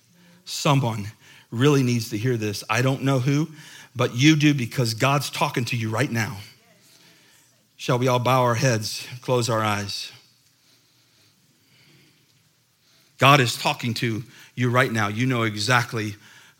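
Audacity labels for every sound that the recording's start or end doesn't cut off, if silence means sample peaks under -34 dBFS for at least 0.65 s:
7.800000	10.100000	sound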